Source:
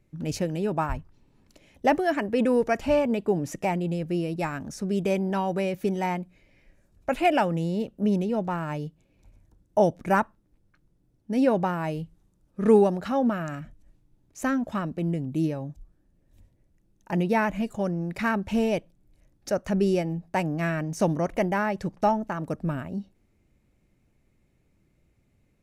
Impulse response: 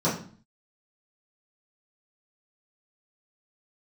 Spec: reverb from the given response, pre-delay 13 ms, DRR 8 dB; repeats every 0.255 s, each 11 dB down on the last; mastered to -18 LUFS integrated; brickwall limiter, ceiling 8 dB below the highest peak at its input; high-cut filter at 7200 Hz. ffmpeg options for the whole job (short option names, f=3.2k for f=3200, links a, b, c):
-filter_complex "[0:a]lowpass=7.2k,alimiter=limit=-15.5dB:level=0:latency=1,aecho=1:1:255|510|765:0.282|0.0789|0.0221,asplit=2[a][b];[1:a]atrim=start_sample=2205,adelay=13[c];[b][c]afir=irnorm=-1:irlink=0,volume=-21.5dB[d];[a][d]amix=inputs=2:normalize=0,volume=6.5dB"